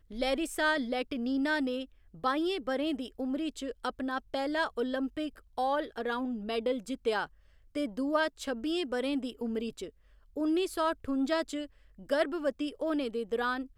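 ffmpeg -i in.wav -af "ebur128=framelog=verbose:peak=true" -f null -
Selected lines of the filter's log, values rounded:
Integrated loudness:
  I:         -32.6 LUFS
  Threshold: -42.9 LUFS
Loudness range:
  LRA:         2.0 LU
  Threshold: -53.2 LUFS
  LRA low:   -34.0 LUFS
  LRA high:  -31.9 LUFS
True peak:
  Peak:      -15.1 dBFS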